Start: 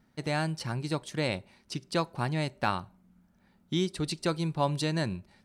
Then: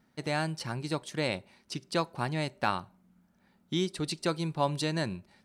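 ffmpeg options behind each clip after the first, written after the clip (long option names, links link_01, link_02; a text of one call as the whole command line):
ffmpeg -i in.wav -af "lowshelf=frequency=97:gain=-9.5" out.wav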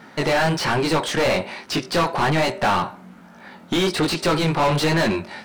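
ffmpeg -i in.wav -filter_complex "[0:a]flanger=delay=17.5:depth=6.4:speed=1.2,asplit=2[link_01][link_02];[link_02]highpass=frequency=720:poles=1,volume=35dB,asoftclip=type=tanh:threshold=-16dB[link_03];[link_01][link_03]amix=inputs=2:normalize=0,lowpass=frequency=2000:poles=1,volume=-6dB,volume=5.5dB" out.wav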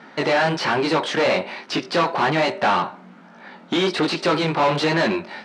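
ffmpeg -i in.wav -af "highpass=200,lowpass=4900,volume=1dB" out.wav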